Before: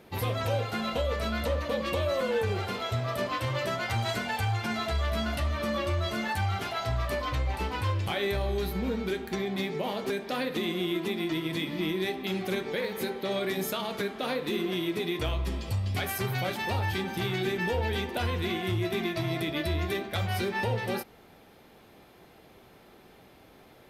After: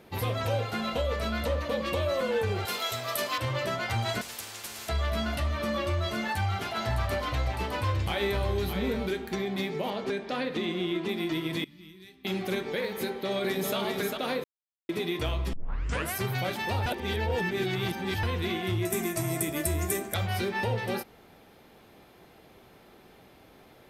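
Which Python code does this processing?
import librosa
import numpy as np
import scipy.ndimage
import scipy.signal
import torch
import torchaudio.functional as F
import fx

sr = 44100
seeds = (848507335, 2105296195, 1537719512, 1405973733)

y = fx.riaa(x, sr, side='recording', at=(2.65, 3.38))
y = fx.spectral_comp(y, sr, ratio=10.0, at=(4.21, 4.89))
y = fx.echo_single(y, sr, ms=610, db=-7.0, at=(6.74, 9.06), fade=0.02)
y = fx.air_absorb(y, sr, metres=62.0, at=(9.9, 11.09))
y = fx.tone_stack(y, sr, knobs='6-0-2', at=(11.64, 12.25))
y = fx.echo_throw(y, sr, start_s=13.04, length_s=0.73, ms=400, feedback_pct=30, wet_db=-4.0)
y = fx.high_shelf_res(y, sr, hz=5600.0, db=13.5, q=3.0, at=(18.85, 20.14))
y = fx.edit(y, sr, fx.silence(start_s=14.44, length_s=0.45),
    fx.tape_start(start_s=15.53, length_s=0.62),
    fx.reverse_span(start_s=16.86, length_s=1.37), tone=tone)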